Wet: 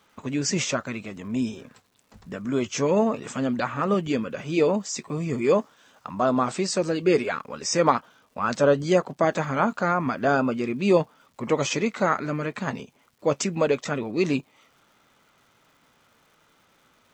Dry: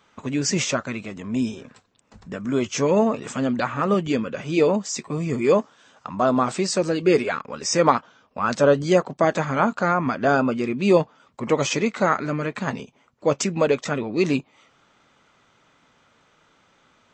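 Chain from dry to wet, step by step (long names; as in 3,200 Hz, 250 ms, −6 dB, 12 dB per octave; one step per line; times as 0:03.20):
surface crackle 550 per second −52 dBFS
level −2.5 dB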